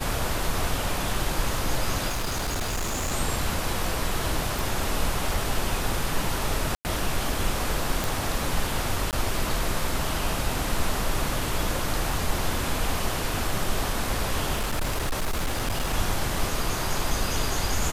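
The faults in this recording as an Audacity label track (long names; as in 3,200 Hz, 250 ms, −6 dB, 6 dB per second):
2.080000	3.130000	clipping −24 dBFS
4.590000	4.590000	click
6.750000	6.850000	drop-out 99 ms
8.040000	8.040000	click
9.110000	9.130000	drop-out 18 ms
14.530000	15.940000	clipping −22 dBFS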